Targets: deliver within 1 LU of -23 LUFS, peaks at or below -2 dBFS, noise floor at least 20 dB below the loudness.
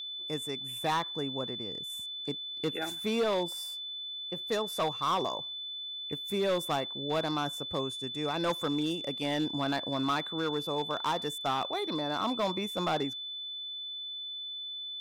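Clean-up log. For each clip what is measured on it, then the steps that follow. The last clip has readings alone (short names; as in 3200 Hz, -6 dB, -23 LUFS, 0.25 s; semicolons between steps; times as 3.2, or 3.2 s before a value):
clipped 1.3%; flat tops at -24.0 dBFS; steady tone 3500 Hz; tone level -37 dBFS; loudness -32.5 LUFS; peak -24.0 dBFS; loudness target -23.0 LUFS
-> clip repair -24 dBFS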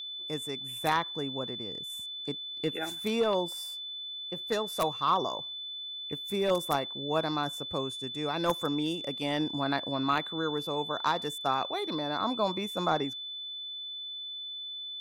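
clipped 0.0%; steady tone 3500 Hz; tone level -37 dBFS
-> notch 3500 Hz, Q 30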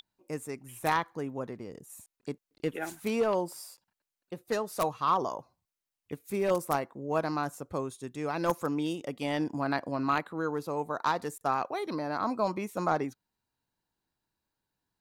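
steady tone none; loudness -32.0 LUFS; peak -14.5 dBFS; loudness target -23.0 LUFS
-> gain +9 dB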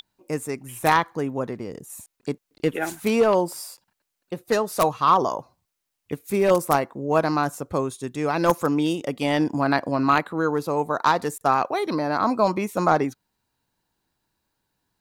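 loudness -23.0 LUFS; peak -5.5 dBFS; noise floor -81 dBFS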